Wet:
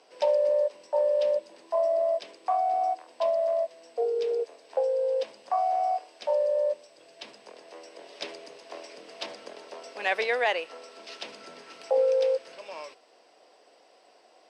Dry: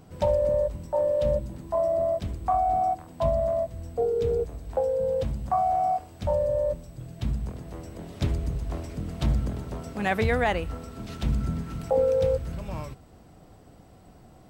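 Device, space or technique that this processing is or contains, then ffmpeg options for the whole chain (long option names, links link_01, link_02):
phone speaker on a table: -af "highpass=frequency=470:width=0.5412,highpass=frequency=470:width=1.3066,equalizer=frequency=790:width_type=q:width=4:gain=-4,equalizer=frequency=1300:width_type=q:width=4:gain=-7,equalizer=frequency=2700:width_type=q:width=4:gain=4,equalizer=frequency=5000:width_type=q:width=4:gain=7,equalizer=frequency=7200:width_type=q:width=4:gain=-8,lowpass=frequency=8300:width=0.5412,lowpass=frequency=8300:width=1.3066,volume=1.5dB"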